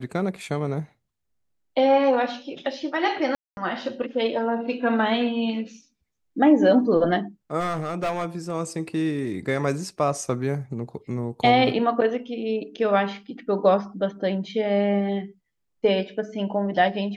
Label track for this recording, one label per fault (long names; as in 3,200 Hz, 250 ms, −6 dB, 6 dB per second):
3.350000	3.570000	drop-out 221 ms
7.590000	8.520000	clipping −21.5 dBFS